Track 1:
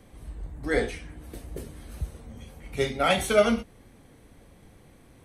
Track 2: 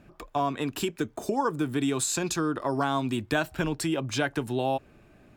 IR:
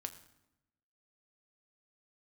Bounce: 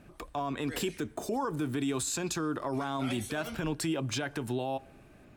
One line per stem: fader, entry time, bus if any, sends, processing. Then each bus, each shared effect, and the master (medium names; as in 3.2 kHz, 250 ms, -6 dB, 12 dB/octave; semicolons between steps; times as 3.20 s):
-19.0 dB, 0.00 s, no send, treble shelf 2 kHz +10 dB
-1.5 dB, 0.00 s, send -13.5 dB, none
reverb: on, RT60 0.90 s, pre-delay 5 ms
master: peak limiter -23.5 dBFS, peak gain reduction 10.5 dB